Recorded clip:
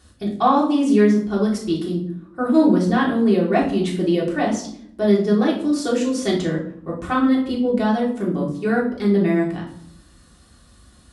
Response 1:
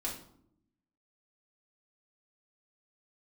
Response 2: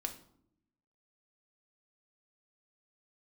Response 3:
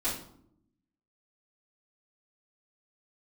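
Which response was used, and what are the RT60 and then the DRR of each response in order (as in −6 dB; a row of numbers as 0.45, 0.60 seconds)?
1; 0.70, 0.70, 0.70 seconds; −4.5, 4.5, −13.5 decibels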